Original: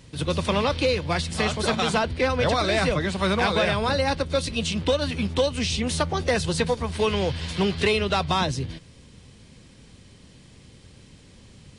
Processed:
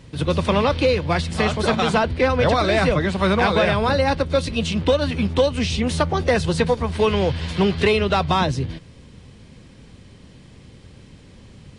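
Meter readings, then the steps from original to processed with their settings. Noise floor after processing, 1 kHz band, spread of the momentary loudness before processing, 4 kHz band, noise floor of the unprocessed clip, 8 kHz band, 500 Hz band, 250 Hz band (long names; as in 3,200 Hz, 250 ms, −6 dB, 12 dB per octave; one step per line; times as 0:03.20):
−46 dBFS, +4.5 dB, 5 LU, +0.5 dB, −51 dBFS, −2.0 dB, +5.0 dB, +5.0 dB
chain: high-shelf EQ 3,700 Hz −9 dB
level +5 dB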